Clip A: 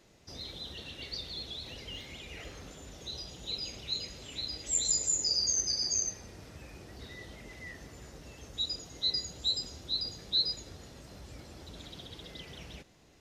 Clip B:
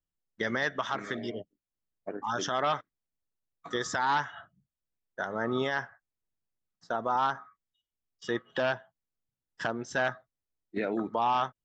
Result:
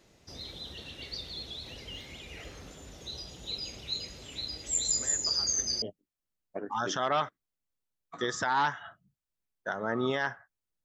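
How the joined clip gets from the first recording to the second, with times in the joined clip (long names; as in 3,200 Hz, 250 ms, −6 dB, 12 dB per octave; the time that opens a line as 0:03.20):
clip A
0:04.96: mix in clip B from 0:00.48 0.86 s −16 dB
0:05.82: continue with clip B from 0:01.34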